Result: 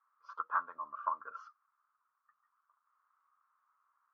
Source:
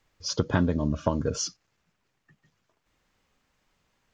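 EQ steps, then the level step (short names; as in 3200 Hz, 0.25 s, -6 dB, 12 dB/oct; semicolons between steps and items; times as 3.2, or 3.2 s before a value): Butterworth band-pass 1200 Hz, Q 4; +7.0 dB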